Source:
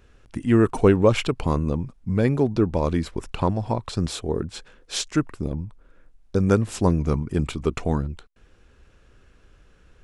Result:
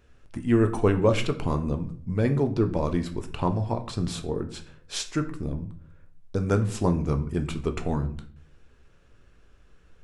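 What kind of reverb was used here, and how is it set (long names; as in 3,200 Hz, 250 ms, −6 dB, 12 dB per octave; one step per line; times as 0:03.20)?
rectangular room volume 54 cubic metres, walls mixed, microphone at 0.31 metres
level −4.5 dB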